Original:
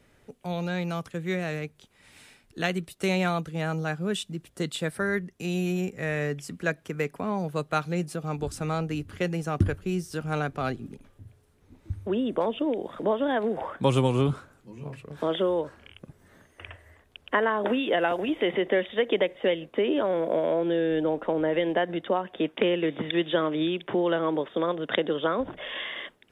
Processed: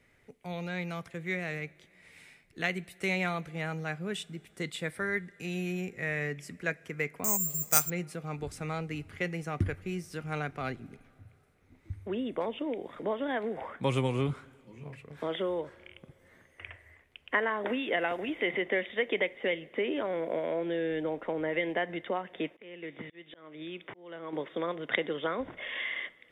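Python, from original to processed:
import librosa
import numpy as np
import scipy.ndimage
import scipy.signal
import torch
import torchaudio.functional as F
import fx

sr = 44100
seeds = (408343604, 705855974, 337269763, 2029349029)

y = fx.peak_eq(x, sr, hz=2100.0, db=11.0, octaves=0.44)
y = fx.rev_double_slope(y, sr, seeds[0], early_s=0.24, late_s=3.4, knee_db=-18, drr_db=16.5)
y = fx.auto_swell(y, sr, attack_ms=799.0, at=(22.48, 24.33))
y = fx.spec_repair(y, sr, seeds[1], start_s=7.39, length_s=0.21, low_hz=240.0, high_hz=9500.0, source='after')
y = fx.resample_bad(y, sr, factor=6, down='none', up='zero_stuff', at=(7.24, 7.9))
y = y * 10.0 ** (-7.0 / 20.0)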